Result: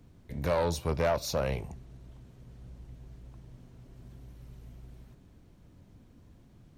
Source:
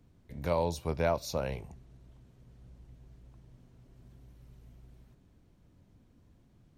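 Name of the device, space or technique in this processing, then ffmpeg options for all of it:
saturation between pre-emphasis and de-emphasis: -af "highshelf=frequency=3500:gain=9,asoftclip=type=tanh:threshold=-27dB,highshelf=frequency=3500:gain=-9,volume=6dB"

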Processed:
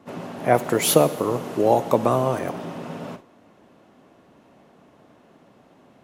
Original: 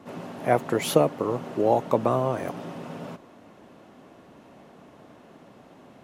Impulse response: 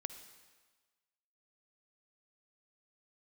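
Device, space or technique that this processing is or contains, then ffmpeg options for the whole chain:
keyed gated reverb: -filter_complex "[0:a]asettb=1/sr,asplit=3[link_01][link_02][link_03];[link_01]atrim=end=0.544[link_04];[link_02]atrim=start=0.54:end=2.39,asetpts=PTS-STARTPTS,afade=type=in:duration=0.004:curve=qsin,afade=type=out:start_time=1.846:duration=0.004:curve=qsin,aemphasis=mode=production:type=cd[link_05];[link_03]atrim=start=2.386[link_06];[link_04][link_05]acrossfade=duration=0.004:curve1=hsin:curve2=qsin[link_07];[link_07][link_06]acrossfade=duration=0.004:curve1=qsin:curve2=hsin,asplit=3[link_08][link_09][link_10];[1:a]atrim=start_sample=2205[link_11];[link_09][link_11]afir=irnorm=-1:irlink=0[link_12];[link_10]apad=whole_len=265939[link_13];[link_12][link_13]sidechaingate=range=-33dB:threshold=-42dB:ratio=16:detection=peak,volume=4.5dB[link_14];[link_08][link_14]amix=inputs=2:normalize=0,volume=-3.5dB"

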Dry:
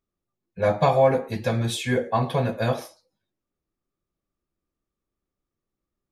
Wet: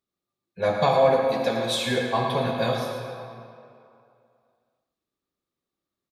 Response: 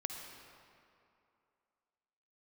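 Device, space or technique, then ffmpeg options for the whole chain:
PA in a hall: -filter_complex "[0:a]asettb=1/sr,asplit=3[link_01][link_02][link_03];[link_01]atrim=end=1.054[link_04];[link_02]atrim=start=1.05:end=1.79,asetpts=PTS-STARTPTS,afade=type=in:duration=0.004:curve=qsin,afade=type=out:start_time=0.736:duration=0.004:curve=qsin,highpass=180[link_05];[link_03]atrim=start=1.786[link_06];[link_04][link_05]acrossfade=duration=0.004:curve1=hsin:curve2=qsin[link_07];[link_07][link_06]acrossfade=duration=0.004:curve1=qsin:curve2=hsin,highpass=frequency=190:poles=1,equalizer=frequency=3900:width_type=o:width=0.54:gain=7,aecho=1:1:111:0.316[link_08];[1:a]atrim=start_sample=2205[link_09];[link_08][link_09]afir=irnorm=-1:irlink=0"

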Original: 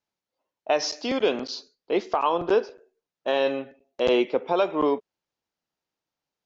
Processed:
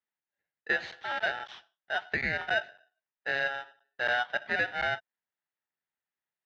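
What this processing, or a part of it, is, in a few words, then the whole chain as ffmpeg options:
ring modulator pedal into a guitar cabinet: -af "aeval=exprs='val(0)*sgn(sin(2*PI*1100*n/s))':channel_layout=same,highpass=84,equalizer=frequency=270:width_type=q:width=4:gain=-5,equalizer=frequency=500:width_type=q:width=4:gain=-3,equalizer=frequency=870:width_type=q:width=4:gain=3,equalizer=frequency=1800:width_type=q:width=4:gain=7,lowpass=frequency=3600:width=0.5412,lowpass=frequency=3600:width=1.3066,volume=-9dB"

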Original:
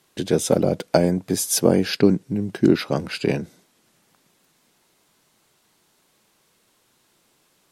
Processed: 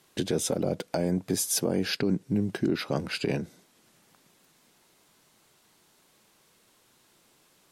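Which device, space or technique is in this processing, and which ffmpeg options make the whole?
stacked limiters: -af "alimiter=limit=-5.5dB:level=0:latency=1:release=196,alimiter=limit=-11dB:level=0:latency=1:release=49,alimiter=limit=-16dB:level=0:latency=1:release=484"

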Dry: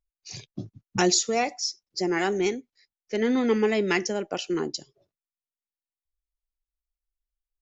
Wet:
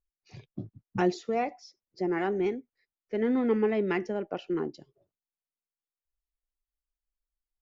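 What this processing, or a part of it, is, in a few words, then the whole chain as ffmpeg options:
phone in a pocket: -af "lowpass=3000,highshelf=frequency=2200:gain=-11,volume=-2.5dB"

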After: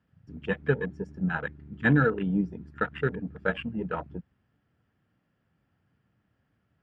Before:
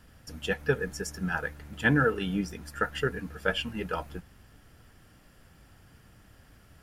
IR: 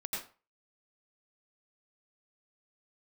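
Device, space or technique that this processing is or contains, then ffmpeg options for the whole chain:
over-cleaned archive recording: -af "highpass=130,lowpass=5800,bass=frequency=250:gain=7,treble=frequency=4000:gain=-13,afwtdn=0.0158"

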